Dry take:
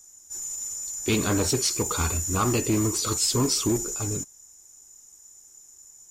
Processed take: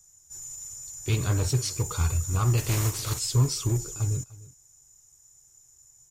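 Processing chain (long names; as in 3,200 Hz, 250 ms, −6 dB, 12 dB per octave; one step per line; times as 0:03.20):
0:02.57–0:03.18: compressing power law on the bin magnitudes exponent 0.56
low shelf with overshoot 170 Hz +8 dB, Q 3
single-tap delay 299 ms −20 dB
level −6.5 dB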